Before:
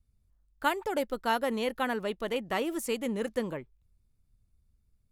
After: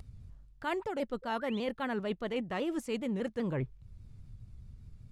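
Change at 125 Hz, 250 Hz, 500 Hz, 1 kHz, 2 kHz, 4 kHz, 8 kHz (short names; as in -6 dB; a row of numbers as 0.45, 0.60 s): +6.5, -0.5, -3.5, -6.5, -6.0, -6.0, -11.5 dB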